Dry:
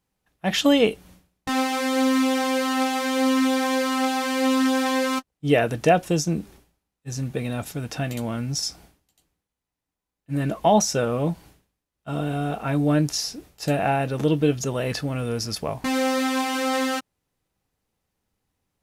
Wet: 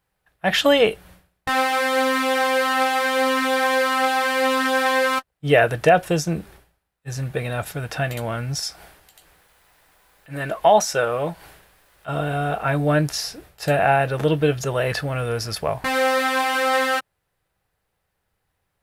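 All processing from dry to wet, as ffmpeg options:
-filter_complex "[0:a]asettb=1/sr,asplit=3[a][b][c];[a]atrim=end=8.604[d];[b]atrim=start=8.6:end=12.09,asetpts=PTS-STARTPTS,afade=t=in:d=0.004:c=qsin,afade=t=out:st=3.486:d=0.004:c=qsin,equalizer=f=90:w=0.37:g=-9,acompressor=mode=upward:threshold=-39dB:ratio=2.5:attack=3.2:release=140:knee=2.83:detection=peak[e];[c]atrim=start=12.086[f];[d][e]acrossfade=d=0.004:c1=hsin:c2=qsin[g];[g][f]acrossfade=d=0.004:c1=qsin:c2=hsin,equalizer=f=250:t=o:w=0.67:g=-11,equalizer=f=630:t=o:w=0.67:g=3,equalizer=f=1.6k:t=o:w=0.67:g=6,equalizer=f=6.3k:t=o:w=0.67:g=-6,alimiter=level_in=7dB:limit=-1dB:release=50:level=0:latency=1,volume=-3.5dB"

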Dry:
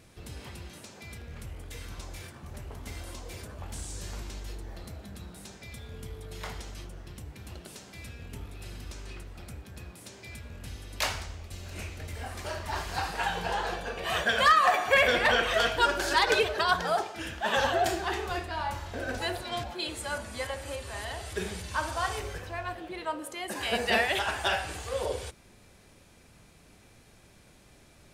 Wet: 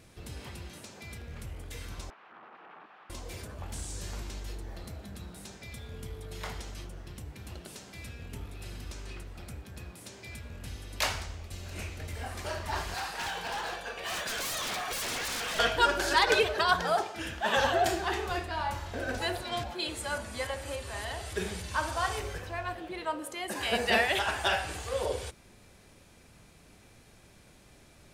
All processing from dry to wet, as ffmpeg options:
-filter_complex "[0:a]asettb=1/sr,asplit=3[a][b][c];[a]atrim=end=2.104[d];[b]atrim=start=2.1:end=3.1,asetpts=PTS-STARTPTS,afade=t=in:d=0.004:c=qsin,afade=t=out:st=0.996:d=0.004:c=qsin,aeval=exprs='(mod(150*val(0)+1,2)-1)/150':c=same,highpass=f=220:w=0.5412,highpass=f=220:w=1.3066,equalizer=f=240:t=q:w=4:g=-4,equalizer=f=360:t=q:w=4:g=-5,equalizer=f=540:t=q:w=4:g=-6,equalizer=f=790:t=q:w=4:g=4,equalizer=f=1.2k:t=q:w=4:g=5,equalizer=f=2.1k:t=q:w=4:g=-5,lowpass=f=2.3k:w=0.5412,lowpass=f=2.3k:w=1.3066,bandreject=f=280:w=7.1[e];[c]atrim=start=3.096[f];[d][e]acrossfade=d=0.004:c1=hsin:c2=qsin[g];[g][f]acrossfade=d=0.004:c1=qsin:c2=hsin,asettb=1/sr,asplit=3[h][i][j];[h]atrim=end=12.944[k];[i]atrim=start=12.94:end=15.59,asetpts=PTS-STARTPTS,afade=t=in:d=0.004:c=qsin,afade=t=out:st=2.646:d=0.004:c=qsin,lowshelf=f=460:g=-11.5,aeval=exprs='0.0335*(abs(mod(val(0)/0.0335+3,4)-2)-1)':c=same[l];[j]atrim=start=15.586[m];[k][l]acrossfade=d=0.004:c1=hsin:c2=qsin[n];[n][m]acrossfade=d=0.004:c1=qsin:c2=hsin"

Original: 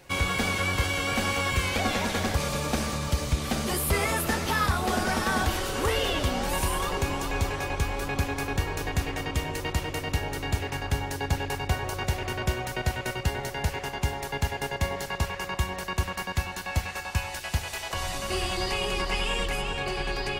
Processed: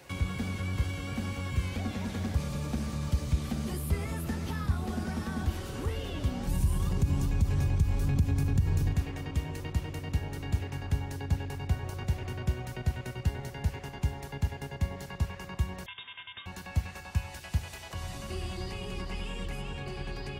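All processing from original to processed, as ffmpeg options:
-filter_complex "[0:a]asettb=1/sr,asplit=3[a][b][c];[a]atrim=end=6.474[d];[b]atrim=start=6.47:end=8.93,asetpts=PTS-STARTPTS,afade=t=in:d=0.004:c=qsin,afade=t=out:st=2.456:d=0.004:c=qsin,bass=f=250:g=13,treble=f=4k:g=7,acompressor=threshold=-19dB:ratio=5:attack=3.2:release=140:knee=1:detection=peak[e];[c]atrim=start=8.926[f];[d][e]acrossfade=d=0.004:c1=hsin:c2=qsin[g];[g][f]acrossfade=d=0.004:c1=qsin:c2=hsin,asettb=1/sr,asplit=3[h][i][j];[h]atrim=end=15.864[k];[i]atrim=start=15.86:end=16.46,asetpts=PTS-STARTPTS,afade=t=in:d=0.004:c=qsin,afade=t=out:st=0.596:d=0.004:c=qsin,highpass=160,lowpass=f=3.2k:t=q:w=0.5098,lowpass=f=3.2k:t=q:w=0.6013,lowpass=f=3.2k:t=q:w=0.9,lowpass=f=3.2k:t=q:w=2.563,afreqshift=-3800[l];[j]atrim=start=16.456[m];[k][l]acrossfade=d=0.004:c1=hsin:c2=qsin[n];[n][m]acrossfade=d=0.004:c1=qsin:c2=hsin,highpass=50,acrossover=split=260[o][p];[p]acompressor=threshold=-46dB:ratio=3[q];[o][q]amix=inputs=2:normalize=0"

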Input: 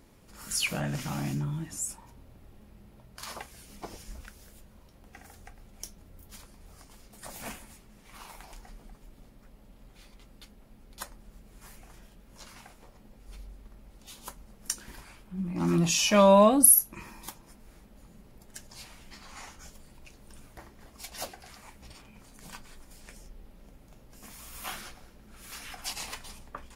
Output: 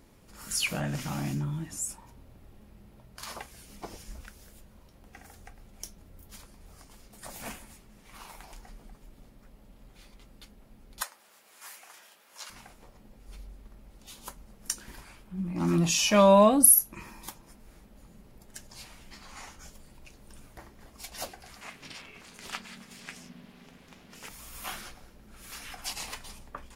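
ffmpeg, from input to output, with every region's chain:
-filter_complex "[0:a]asettb=1/sr,asplit=3[a][b][c];[a]atrim=end=11.014[d];[b]atrim=start=11.01:end=12.5,asetpts=PTS-STARTPTS,afade=t=in:d=0.004:c=qsin,afade=t=out:st=1.486:d=0.004:c=qsin,highpass=890,acontrast=80[e];[c]atrim=start=12.496[f];[d][e]acrossfade=d=0.004:c1=hsin:c2=qsin[g];[g][f]acrossfade=d=0.004:c1=qsin:c2=hsin,asettb=1/sr,asplit=3[h][i][j];[h]atrim=end=21.614[k];[i]atrim=start=21.61:end=24.29,asetpts=PTS-STARTPTS,afade=t=in:d=0.004:c=qsin,afade=t=out:st=2.676:d=0.004:c=qsin,equalizer=f=2.6k:w=0.36:g=14,aeval=exprs='val(0)*sin(2*PI*210*n/s)':c=same[l];[j]atrim=start=24.286[m];[k][l]acrossfade=d=0.004:c1=hsin:c2=qsin[n];[n][m]acrossfade=d=0.004:c1=qsin:c2=hsin"

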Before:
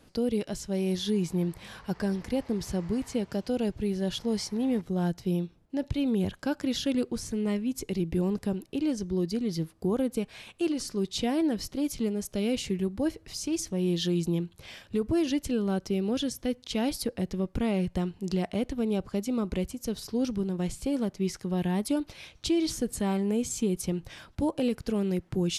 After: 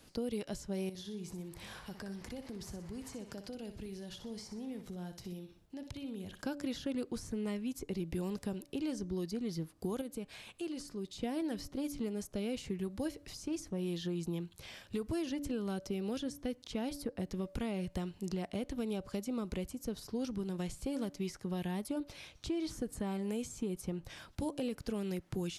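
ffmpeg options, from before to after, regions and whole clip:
-filter_complex "[0:a]asettb=1/sr,asplit=3[a][b][c];[a]atrim=end=0.894[d];[b]atrim=start=0.89:end=6.42,asetpts=PTS-STARTPTS,afade=t=in:d=0.004:c=qsin,afade=t=out:st=5.526:d=0.004:c=qsin,acompressor=threshold=-39dB:ratio=4:attack=3.2:release=140:knee=1:detection=peak,aecho=1:1:61|122|183|244:0.335|0.111|0.0365|0.012,atrim=end_sample=243873[e];[c]atrim=start=6.416[f];[d][e]acrossfade=d=0.004:c1=hsin:c2=qsin[g];[g][f]acrossfade=d=0.004:c1=qsin:c2=hsin,asettb=1/sr,asplit=3[h][i][j];[h]atrim=end=10.014[k];[i]atrim=start=10.01:end=11.23,asetpts=PTS-STARTPTS,afade=t=in:d=0.004:c=qsin,afade=t=out:st=1.216:d=0.004:c=qsin,bandreject=f=5.7k:w=21,acompressor=threshold=-44dB:ratio=1.5:attack=3.2:release=140:knee=1:detection=peak[l];[j]atrim=start=11.226[m];[k][l]acrossfade=d=0.004:c1=hsin:c2=qsin[n];[n][m]acrossfade=d=0.004:c1=qsin:c2=hsin,highshelf=f=2.6k:g=8,bandreject=f=287.1:t=h:w=4,bandreject=f=574.2:t=h:w=4,acrossover=split=690|1600[o][p][q];[o]acompressor=threshold=-31dB:ratio=4[r];[p]acompressor=threshold=-44dB:ratio=4[s];[q]acompressor=threshold=-47dB:ratio=4[t];[r][s][t]amix=inputs=3:normalize=0,volume=-4dB"

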